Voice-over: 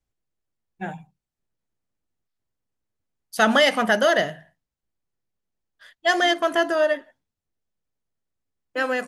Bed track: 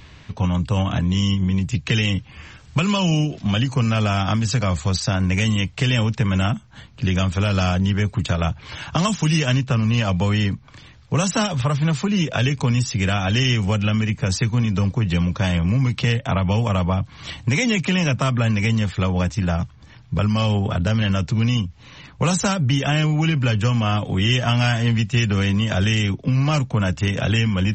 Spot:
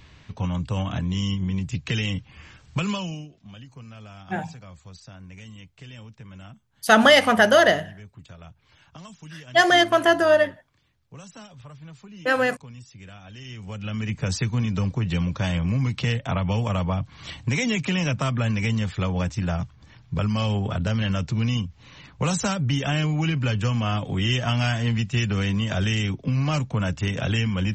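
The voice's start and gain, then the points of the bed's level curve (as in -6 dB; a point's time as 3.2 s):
3.50 s, +3.0 dB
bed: 2.9 s -6 dB
3.35 s -23.5 dB
13.37 s -23.5 dB
14.15 s -4.5 dB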